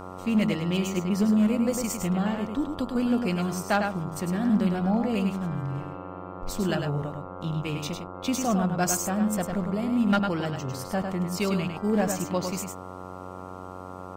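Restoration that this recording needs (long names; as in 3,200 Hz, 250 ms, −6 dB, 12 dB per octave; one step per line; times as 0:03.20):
clipped peaks rebuilt −16 dBFS
hum removal 92.2 Hz, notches 15
echo removal 103 ms −6 dB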